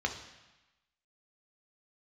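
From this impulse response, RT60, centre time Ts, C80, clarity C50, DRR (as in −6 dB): 1.1 s, 18 ms, 11.5 dB, 9.0 dB, 3.0 dB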